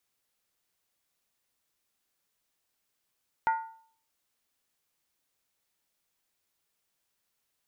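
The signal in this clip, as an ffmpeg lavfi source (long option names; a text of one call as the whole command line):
ffmpeg -f lavfi -i "aevalsrc='0.0944*pow(10,-3*t/0.53)*sin(2*PI*898*t)+0.0376*pow(10,-3*t/0.42)*sin(2*PI*1431.4*t)+0.015*pow(10,-3*t/0.363)*sin(2*PI*1918.1*t)+0.00596*pow(10,-3*t/0.35)*sin(2*PI*2061.8*t)+0.00237*pow(10,-3*t/0.325)*sin(2*PI*2382.4*t)':duration=0.63:sample_rate=44100" out.wav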